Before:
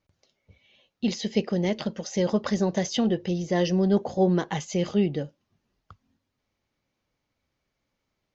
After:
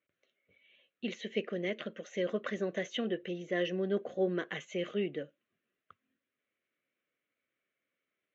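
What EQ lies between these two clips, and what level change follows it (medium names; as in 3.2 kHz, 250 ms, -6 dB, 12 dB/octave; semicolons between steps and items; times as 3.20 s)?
band-pass 540–5600 Hz; tilt EQ -1.5 dB/octave; static phaser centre 2.1 kHz, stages 4; 0.0 dB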